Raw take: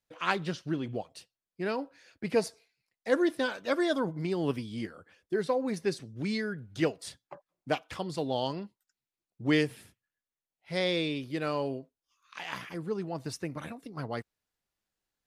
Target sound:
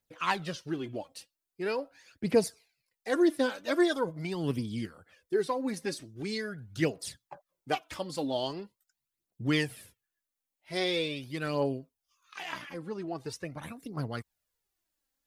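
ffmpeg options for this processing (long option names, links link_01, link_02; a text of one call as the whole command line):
ffmpeg -i in.wav -af "asetnsamples=nb_out_samples=441:pad=0,asendcmd='12.52 highshelf g -3;13.63 highshelf g 9.5',highshelf=frequency=7900:gain=8.5,aphaser=in_gain=1:out_gain=1:delay=3.9:decay=0.54:speed=0.43:type=triangular,volume=-2dB" out.wav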